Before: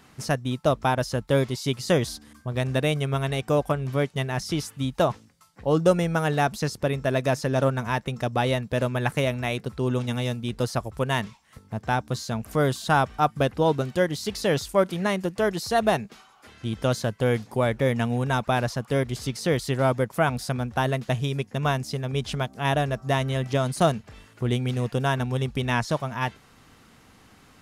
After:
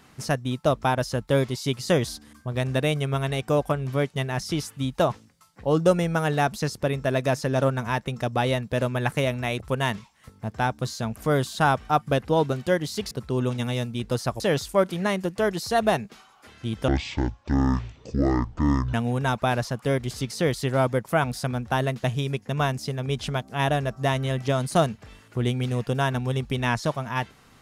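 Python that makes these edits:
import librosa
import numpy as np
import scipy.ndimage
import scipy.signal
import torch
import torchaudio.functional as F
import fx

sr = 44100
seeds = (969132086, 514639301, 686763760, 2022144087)

y = fx.edit(x, sr, fx.move(start_s=9.6, length_s=1.29, to_s=14.4),
    fx.speed_span(start_s=16.88, length_s=1.11, speed=0.54), tone=tone)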